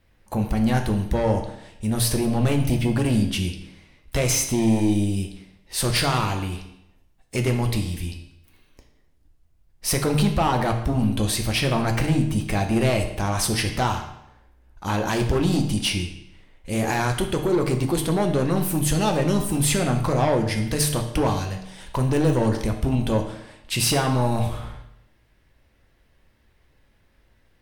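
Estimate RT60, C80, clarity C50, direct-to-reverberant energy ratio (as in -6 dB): 0.80 s, 10.5 dB, 8.0 dB, 4.0 dB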